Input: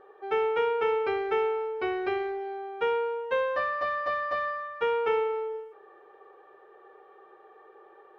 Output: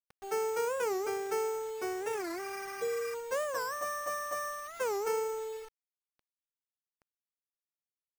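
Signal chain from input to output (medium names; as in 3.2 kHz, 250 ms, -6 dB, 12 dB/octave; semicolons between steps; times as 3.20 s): high-pass 100 Hz 24 dB/octave; spectral replace 2.17–3.12 s, 850–3000 Hz before; bit crusher 7-bit; distance through air 160 m; careless resampling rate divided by 6×, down none, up hold; warped record 45 rpm, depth 250 cents; trim -5.5 dB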